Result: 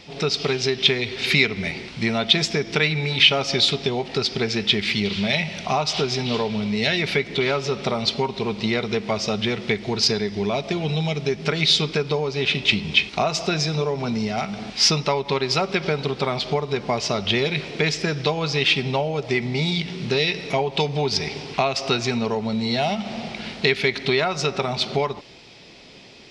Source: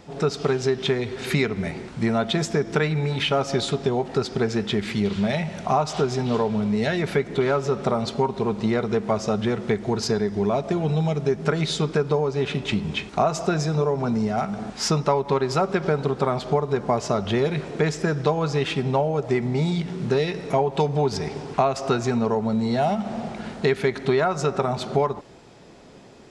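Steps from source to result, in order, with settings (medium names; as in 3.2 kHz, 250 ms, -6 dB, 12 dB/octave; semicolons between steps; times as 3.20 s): high-order bell 3.4 kHz +13 dB; trim -1.5 dB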